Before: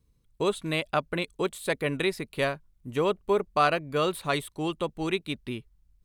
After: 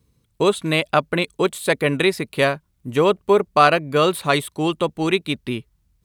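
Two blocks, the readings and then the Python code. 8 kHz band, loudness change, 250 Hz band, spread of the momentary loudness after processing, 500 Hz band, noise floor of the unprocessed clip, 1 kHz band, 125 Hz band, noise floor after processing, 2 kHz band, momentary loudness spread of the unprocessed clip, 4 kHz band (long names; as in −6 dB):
+9.0 dB, +9.0 dB, +9.0 dB, 9 LU, +9.0 dB, −68 dBFS, +9.0 dB, +8.5 dB, −66 dBFS, +9.0 dB, 9 LU, +9.0 dB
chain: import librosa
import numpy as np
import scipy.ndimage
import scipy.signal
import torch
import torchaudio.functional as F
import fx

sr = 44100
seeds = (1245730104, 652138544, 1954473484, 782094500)

y = scipy.signal.sosfilt(scipy.signal.butter(2, 77.0, 'highpass', fs=sr, output='sos'), x)
y = y * 10.0 ** (9.0 / 20.0)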